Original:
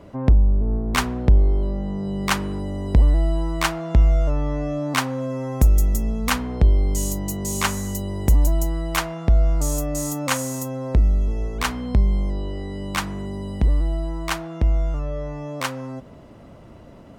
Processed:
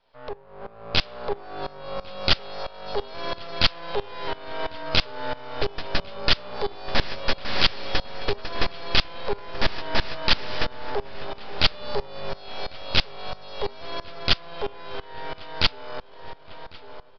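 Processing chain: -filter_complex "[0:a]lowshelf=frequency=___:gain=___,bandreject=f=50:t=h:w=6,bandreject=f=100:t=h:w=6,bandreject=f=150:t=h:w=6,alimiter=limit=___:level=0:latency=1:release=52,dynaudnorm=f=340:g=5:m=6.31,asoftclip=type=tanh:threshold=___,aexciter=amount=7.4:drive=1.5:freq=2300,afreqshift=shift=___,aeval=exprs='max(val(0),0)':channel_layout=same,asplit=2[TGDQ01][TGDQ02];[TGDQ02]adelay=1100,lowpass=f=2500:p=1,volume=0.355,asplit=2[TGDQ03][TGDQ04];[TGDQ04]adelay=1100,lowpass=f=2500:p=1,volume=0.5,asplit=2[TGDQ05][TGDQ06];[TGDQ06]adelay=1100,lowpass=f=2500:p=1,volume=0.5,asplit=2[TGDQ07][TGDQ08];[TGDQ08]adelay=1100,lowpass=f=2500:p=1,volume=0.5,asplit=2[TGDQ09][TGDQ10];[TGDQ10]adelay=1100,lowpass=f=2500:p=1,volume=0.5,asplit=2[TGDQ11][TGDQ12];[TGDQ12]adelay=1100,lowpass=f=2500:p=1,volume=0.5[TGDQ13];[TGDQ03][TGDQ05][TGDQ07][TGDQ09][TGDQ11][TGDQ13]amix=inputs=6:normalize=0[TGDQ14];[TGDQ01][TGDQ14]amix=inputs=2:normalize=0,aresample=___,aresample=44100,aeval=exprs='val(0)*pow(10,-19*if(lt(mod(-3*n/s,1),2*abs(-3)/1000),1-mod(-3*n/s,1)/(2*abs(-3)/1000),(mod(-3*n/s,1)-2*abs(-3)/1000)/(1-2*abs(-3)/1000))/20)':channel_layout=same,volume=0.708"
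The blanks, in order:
110, -11, 0.299, 0.282, 350, 11025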